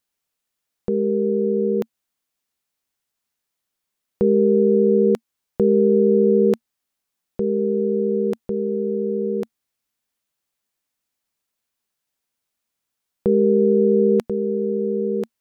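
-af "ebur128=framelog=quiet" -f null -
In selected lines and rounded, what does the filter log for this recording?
Integrated loudness:
  I:         -19.5 LUFS
  Threshold: -29.8 LUFS
Loudness range:
  LRA:        10.4 LU
  Threshold: -41.9 LUFS
  LRA low:   -28.5 LUFS
  LRA high:  -18.1 LUFS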